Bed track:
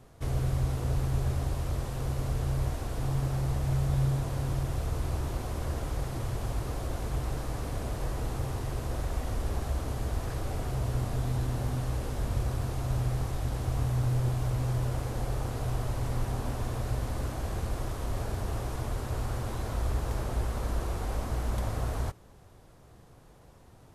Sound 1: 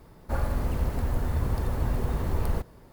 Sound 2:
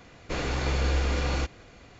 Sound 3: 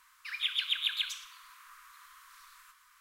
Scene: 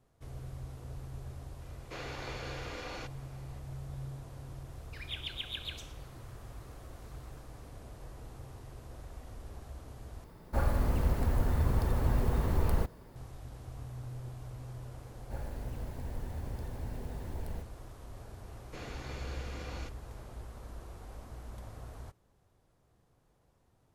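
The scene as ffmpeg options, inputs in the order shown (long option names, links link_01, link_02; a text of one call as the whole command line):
ffmpeg -i bed.wav -i cue0.wav -i cue1.wav -i cue2.wav -filter_complex "[2:a]asplit=2[link_01][link_02];[1:a]asplit=2[link_03][link_04];[0:a]volume=-15dB[link_05];[link_01]highpass=330,lowpass=6600[link_06];[link_04]asuperstop=centerf=1200:order=4:qfactor=2.5[link_07];[link_05]asplit=2[link_08][link_09];[link_08]atrim=end=10.244[link_10];[link_03]atrim=end=2.92,asetpts=PTS-STARTPTS,volume=-1.5dB[link_11];[link_09]atrim=start=13.156[link_12];[link_06]atrim=end=1.99,asetpts=PTS-STARTPTS,volume=-10dB,afade=type=in:duration=0.004:curve=hsin,afade=type=out:start_time=1.986:duration=0.004:curve=hsin,adelay=1610[link_13];[3:a]atrim=end=3,asetpts=PTS-STARTPTS,volume=-9dB,afade=type=in:duration=0.004:curve=hsin,afade=type=out:start_time=2.996:duration=0.004:curve=hsin,adelay=4680[link_14];[link_07]atrim=end=2.92,asetpts=PTS-STARTPTS,volume=-13dB,afade=type=in:duration=0.004:curve=hsin,afade=type=out:start_time=2.916:duration=0.004:curve=hsin,adelay=15010[link_15];[link_02]atrim=end=1.99,asetpts=PTS-STARTPTS,volume=-14.5dB,afade=type=in:duration=0.004:curve=hsin,afade=type=out:start_time=1.986:duration=0.004:curve=hsin,adelay=18430[link_16];[link_10][link_11]acrossfade=duration=0.004:curve1=hsin:curve2=hsin[link_17];[link_17][link_12]acrossfade=duration=0.004:curve1=hsin:curve2=hsin[link_18];[link_18][link_13][link_14][link_15][link_16]amix=inputs=5:normalize=0" out.wav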